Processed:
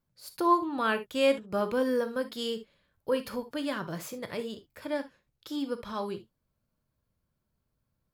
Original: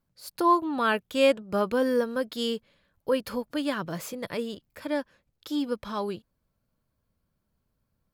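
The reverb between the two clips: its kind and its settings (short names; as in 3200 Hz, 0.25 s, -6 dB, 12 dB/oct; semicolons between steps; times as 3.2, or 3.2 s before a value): non-linear reverb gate 90 ms flat, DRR 9 dB; gain -3.5 dB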